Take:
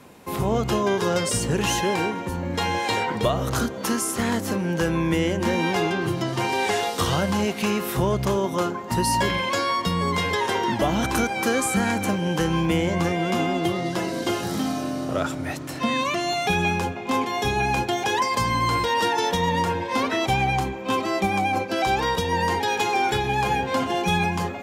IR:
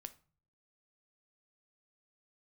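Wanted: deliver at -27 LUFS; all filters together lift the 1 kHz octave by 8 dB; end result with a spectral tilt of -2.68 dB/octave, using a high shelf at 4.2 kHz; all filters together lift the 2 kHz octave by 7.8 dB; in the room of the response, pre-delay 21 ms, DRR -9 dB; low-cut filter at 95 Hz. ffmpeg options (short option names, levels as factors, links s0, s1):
-filter_complex "[0:a]highpass=95,equalizer=f=1000:t=o:g=8,equalizer=f=2000:t=o:g=8.5,highshelf=f=4200:g=-5,asplit=2[s0][s1];[1:a]atrim=start_sample=2205,adelay=21[s2];[s1][s2]afir=irnorm=-1:irlink=0,volume=5.31[s3];[s0][s3]amix=inputs=2:normalize=0,volume=0.126"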